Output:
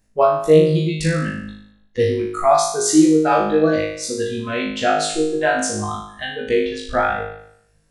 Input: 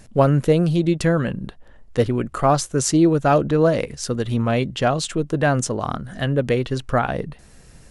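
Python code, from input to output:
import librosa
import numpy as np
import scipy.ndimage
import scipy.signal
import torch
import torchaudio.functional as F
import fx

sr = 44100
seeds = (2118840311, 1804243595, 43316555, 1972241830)

y = fx.noise_reduce_blind(x, sr, reduce_db=19)
y = fx.room_flutter(y, sr, wall_m=3.3, rt60_s=0.71)
y = y * 10.0 ** (-1.0 / 20.0)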